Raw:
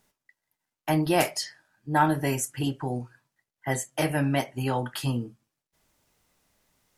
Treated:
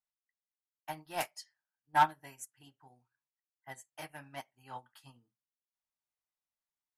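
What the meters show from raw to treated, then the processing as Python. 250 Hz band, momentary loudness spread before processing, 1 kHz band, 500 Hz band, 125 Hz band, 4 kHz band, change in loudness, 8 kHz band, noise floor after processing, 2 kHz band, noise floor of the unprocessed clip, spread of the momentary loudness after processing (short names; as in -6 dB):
-25.5 dB, 14 LU, -5.0 dB, -18.0 dB, -25.0 dB, -13.0 dB, -7.0 dB, -15.5 dB, under -85 dBFS, -9.0 dB, under -85 dBFS, 22 LU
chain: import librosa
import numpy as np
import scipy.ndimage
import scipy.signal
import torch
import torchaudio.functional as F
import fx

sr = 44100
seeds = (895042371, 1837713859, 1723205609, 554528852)

y = np.clip(10.0 ** (16.0 / 20.0) * x, -1.0, 1.0) / 10.0 ** (16.0 / 20.0)
y = fx.low_shelf_res(y, sr, hz=630.0, db=-8.0, q=1.5)
y = fx.upward_expand(y, sr, threshold_db=-37.0, expansion=2.5)
y = y * librosa.db_to_amplitude(-1.5)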